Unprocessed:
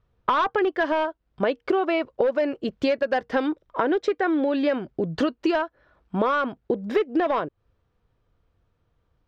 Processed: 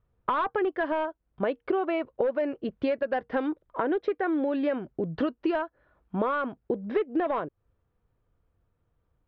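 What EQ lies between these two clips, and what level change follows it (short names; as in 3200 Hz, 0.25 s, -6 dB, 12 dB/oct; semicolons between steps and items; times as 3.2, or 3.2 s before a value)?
air absorption 330 m; -3.5 dB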